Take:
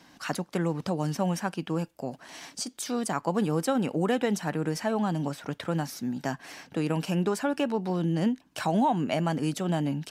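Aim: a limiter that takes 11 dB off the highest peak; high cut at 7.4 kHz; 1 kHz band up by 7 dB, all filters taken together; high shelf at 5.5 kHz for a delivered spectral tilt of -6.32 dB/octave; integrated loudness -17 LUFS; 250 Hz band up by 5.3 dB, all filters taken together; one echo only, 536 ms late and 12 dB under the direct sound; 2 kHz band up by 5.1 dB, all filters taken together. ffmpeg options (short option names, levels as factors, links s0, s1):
-af "lowpass=7400,equalizer=f=250:t=o:g=6.5,equalizer=f=1000:t=o:g=8,equalizer=f=2000:t=o:g=4.5,highshelf=f=5500:g=-9,alimiter=limit=0.112:level=0:latency=1,aecho=1:1:536:0.251,volume=3.76"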